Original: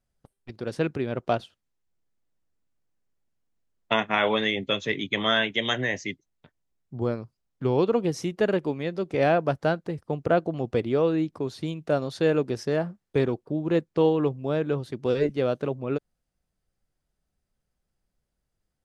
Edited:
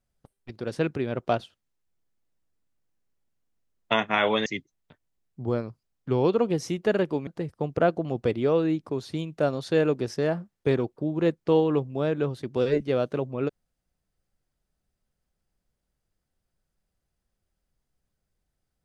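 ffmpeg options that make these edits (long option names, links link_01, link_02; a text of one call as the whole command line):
ffmpeg -i in.wav -filter_complex "[0:a]asplit=3[link_01][link_02][link_03];[link_01]atrim=end=4.462[link_04];[link_02]atrim=start=5.998:end=8.812[link_05];[link_03]atrim=start=9.758[link_06];[link_04][link_05]acrossfade=duration=0.004:curve1=hsin:curve2=hsin[link_07];[link_07][link_06]acrossfade=duration=0.004:curve1=hsin:curve2=hsin" out.wav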